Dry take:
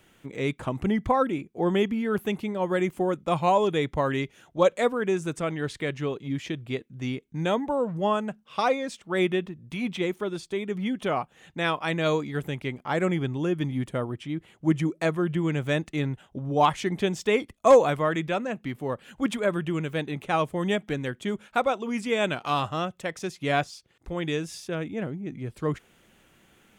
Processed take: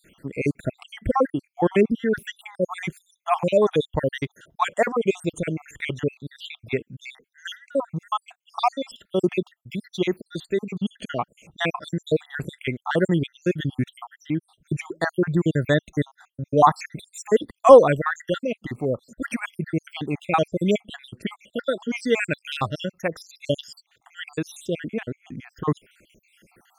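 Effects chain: random holes in the spectrogram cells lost 70%; 4.66–5.35 s: dynamic bell 690 Hz, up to +5 dB, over -41 dBFS, Q 1.6; trim +6.5 dB

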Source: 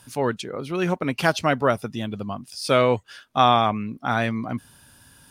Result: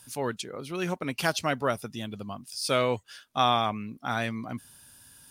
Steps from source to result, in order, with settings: treble shelf 3.7 kHz +10 dB; trim -7.5 dB

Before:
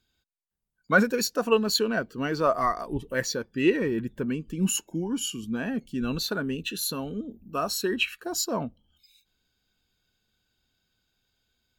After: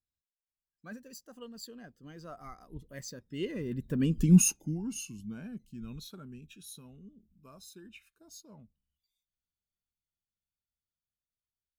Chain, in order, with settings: Doppler pass-by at 4.21 s, 23 m/s, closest 2.9 m; tone controls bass +13 dB, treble +9 dB

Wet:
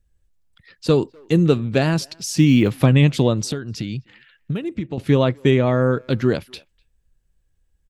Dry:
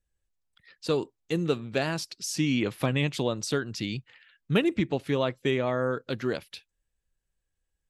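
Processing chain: 2.19–2.76 s: block-companded coder 7-bit; bass shelf 290 Hz +11.5 dB; 3.45–4.98 s: compression 6:1, threshold -29 dBFS, peak gain reduction 15.5 dB; speakerphone echo 250 ms, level -26 dB; trim +5.5 dB

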